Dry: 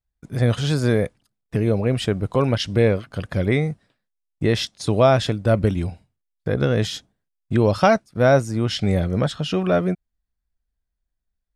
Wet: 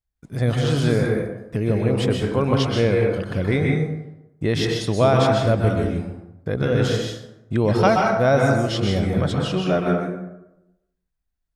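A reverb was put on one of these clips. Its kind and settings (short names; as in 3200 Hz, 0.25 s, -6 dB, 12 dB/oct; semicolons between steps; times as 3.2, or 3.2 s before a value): plate-style reverb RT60 0.9 s, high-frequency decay 0.55×, pre-delay 0.115 s, DRR -1 dB; gain -2.5 dB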